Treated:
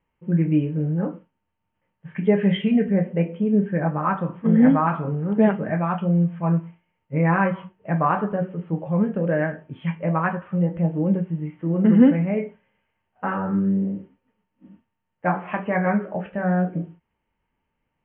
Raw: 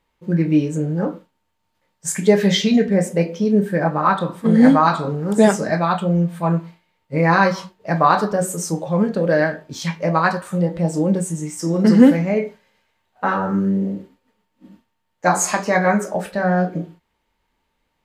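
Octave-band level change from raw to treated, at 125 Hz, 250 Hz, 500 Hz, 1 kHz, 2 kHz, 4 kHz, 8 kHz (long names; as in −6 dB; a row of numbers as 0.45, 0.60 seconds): −1.0 dB, −3.0 dB, −6.0 dB, −6.5 dB, −7.0 dB, below −10 dB, below −40 dB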